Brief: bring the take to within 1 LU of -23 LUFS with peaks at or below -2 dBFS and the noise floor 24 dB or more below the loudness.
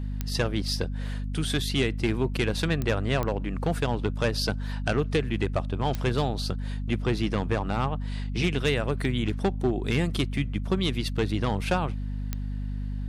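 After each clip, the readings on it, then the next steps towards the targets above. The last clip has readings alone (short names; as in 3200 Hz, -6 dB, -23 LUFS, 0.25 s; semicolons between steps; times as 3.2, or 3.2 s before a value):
clicks 5; hum 50 Hz; harmonics up to 250 Hz; hum level -28 dBFS; loudness -28.0 LUFS; peak -14.5 dBFS; loudness target -23.0 LUFS
-> de-click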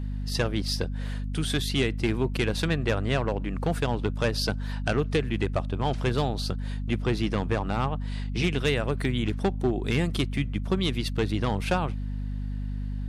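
clicks 0; hum 50 Hz; harmonics up to 250 Hz; hum level -28 dBFS
-> de-hum 50 Hz, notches 5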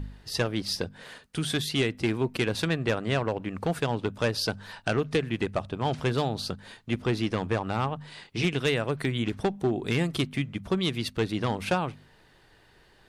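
hum none; loudness -29.0 LUFS; peak -16.5 dBFS; loudness target -23.0 LUFS
-> gain +6 dB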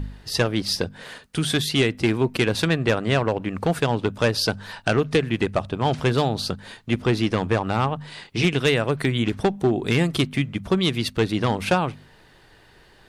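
loudness -23.0 LUFS; peak -10.5 dBFS; noise floor -53 dBFS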